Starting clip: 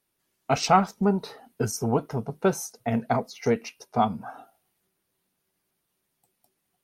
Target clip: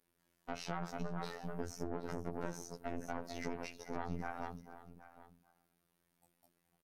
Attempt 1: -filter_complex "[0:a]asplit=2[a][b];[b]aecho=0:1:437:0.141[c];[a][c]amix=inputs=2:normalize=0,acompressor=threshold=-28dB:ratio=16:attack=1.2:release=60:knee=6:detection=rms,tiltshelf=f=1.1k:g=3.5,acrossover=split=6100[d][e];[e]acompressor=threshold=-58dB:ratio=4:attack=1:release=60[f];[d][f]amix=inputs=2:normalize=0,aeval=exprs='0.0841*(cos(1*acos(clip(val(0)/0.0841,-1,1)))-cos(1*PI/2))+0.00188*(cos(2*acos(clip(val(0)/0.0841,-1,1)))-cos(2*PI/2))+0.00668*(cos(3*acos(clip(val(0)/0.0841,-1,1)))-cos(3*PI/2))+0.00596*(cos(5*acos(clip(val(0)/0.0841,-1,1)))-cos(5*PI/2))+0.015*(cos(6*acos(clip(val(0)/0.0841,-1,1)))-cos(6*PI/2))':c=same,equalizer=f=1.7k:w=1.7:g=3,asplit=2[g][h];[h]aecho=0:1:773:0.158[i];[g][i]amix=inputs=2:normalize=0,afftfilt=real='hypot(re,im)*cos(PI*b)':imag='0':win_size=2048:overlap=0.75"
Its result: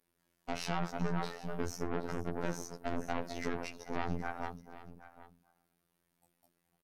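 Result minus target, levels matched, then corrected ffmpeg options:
compressor: peak gain reduction -7 dB
-filter_complex "[0:a]asplit=2[a][b];[b]aecho=0:1:437:0.141[c];[a][c]amix=inputs=2:normalize=0,acompressor=threshold=-35.5dB:ratio=16:attack=1.2:release=60:knee=6:detection=rms,tiltshelf=f=1.1k:g=3.5,acrossover=split=6100[d][e];[e]acompressor=threshold=-58dB:ratio=4:attack=1:release=60[f];[d][f]amix=inputs=2:normalize=0,aeval=exprs='0.0841*(cos(1*acos(clip(val(0)/0.0841,-1,1)))-cos(1*PI/2))+0.00188*(cos(2*acos(clip(val(0)/0.0841,-1,1)))-cos(2*PI/2))+0.00668*(cos(3*acos(clip(val(0)/0.0841,-1,1)))-cos(3*PI/2))+0.00596*(cos(5*acos(clip(val(0)/0.0841,-1,1)))-cos(5*PI/2))+0.015*(cos(6*acos(clip(val(0)/0.0841,-1,1)))-cos(6*PI/2))':c=same,equalizer=f=1.7k:w=1.7:g=3,asplit=2[g][h];[h]aecho=0:1:773:0.158[i];[g][i]amix=inputs=2:normalize=0,afftfilt=real='hypot(re,im)*cos(PI*b)':imag='0':win_size=2048:overlap=0.75"

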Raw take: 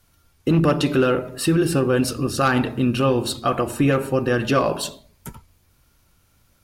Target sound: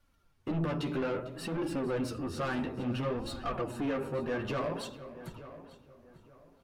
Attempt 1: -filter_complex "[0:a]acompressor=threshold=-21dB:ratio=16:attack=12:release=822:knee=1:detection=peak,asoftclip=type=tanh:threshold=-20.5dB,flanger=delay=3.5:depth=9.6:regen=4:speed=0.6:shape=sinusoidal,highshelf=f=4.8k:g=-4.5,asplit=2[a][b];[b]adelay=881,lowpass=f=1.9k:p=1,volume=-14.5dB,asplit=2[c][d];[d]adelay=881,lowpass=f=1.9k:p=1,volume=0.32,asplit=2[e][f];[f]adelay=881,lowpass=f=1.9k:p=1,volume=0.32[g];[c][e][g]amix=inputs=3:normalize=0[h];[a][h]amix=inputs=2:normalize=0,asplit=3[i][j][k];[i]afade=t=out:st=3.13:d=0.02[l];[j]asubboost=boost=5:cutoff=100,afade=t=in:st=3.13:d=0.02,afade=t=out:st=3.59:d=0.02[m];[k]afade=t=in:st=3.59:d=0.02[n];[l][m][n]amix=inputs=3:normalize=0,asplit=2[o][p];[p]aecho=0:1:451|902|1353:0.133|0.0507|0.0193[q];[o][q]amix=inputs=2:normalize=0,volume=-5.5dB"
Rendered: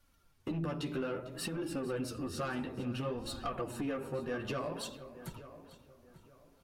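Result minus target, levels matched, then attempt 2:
compressor: peak gain reduction +9.5 dB; 8000 Hz band +7.0 dB
-filter_complex "[0:a]asoftclip=type=tanh:threshold=-20.5dB,flanger=delay=3.5:depth=9.6:regen=4:speed=0.6:shape=sinusoidal,highshelf=f=4.8k:g=-12.5,asplit=2[a][b];[b]adelay=881,lowpass=f=1.9k:p=1,volume=-14.5dB,asplit=2[c][d];[d]adelay=881,lowpass=f=1.9k:p=1,volume=0.32,asplit=2[e][f];[f]adelay=881,lowpass=f=1.9k:p=1,volume=0.32[g];[c][e][g]amix=inputs=3:normalize=0[h];[a][h]amix=inputs=2:normalize=0,asplit=3[i][j][k];[i]afade=t=out:st=3.13:d=0.02[l];[j]asubboost=boost=5:cutoff=100,afade=t=in:st=3.13:d=0.02,afade=t=out:st=3.59:d=0.02[m];[k]afade=t=in:st=3.59:d=0.02[n];[l][m][n]amix=inputs=3:normalize=0,asplit=2[o][p];[p]aecho=0:1:451|902|1353:0.133|0.0507|0.0193[q];[o][q]amix=inputs=2:normalize=0,volume=-5.5dB"

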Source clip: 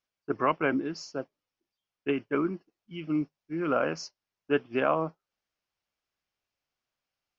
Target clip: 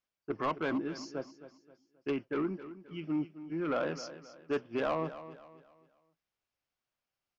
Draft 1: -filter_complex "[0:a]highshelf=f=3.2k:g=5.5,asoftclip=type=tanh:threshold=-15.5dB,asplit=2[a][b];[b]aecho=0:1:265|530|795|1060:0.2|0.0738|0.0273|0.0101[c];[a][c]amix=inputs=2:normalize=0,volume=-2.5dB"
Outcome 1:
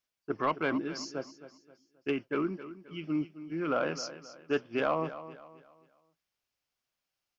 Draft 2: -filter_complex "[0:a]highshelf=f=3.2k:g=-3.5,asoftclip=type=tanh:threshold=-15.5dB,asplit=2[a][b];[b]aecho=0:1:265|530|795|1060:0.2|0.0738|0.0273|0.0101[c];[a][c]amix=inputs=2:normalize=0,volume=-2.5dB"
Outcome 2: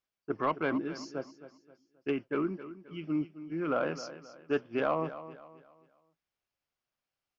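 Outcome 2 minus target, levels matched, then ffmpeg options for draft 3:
soft clip: distortion -8 dB
-filter_complex "[0:a]highshelf=f=3.2k:g=-3.5,asoftclip=type=tanh:threshold=-22.5dB,asplit=2[a][b];[b]aecho=0:1:265|530|795|1060:0.2|0.0738|0.0273|0.0101[c];[a][c]amix=inputs=2:normalize=0,volume=-2.5dB"

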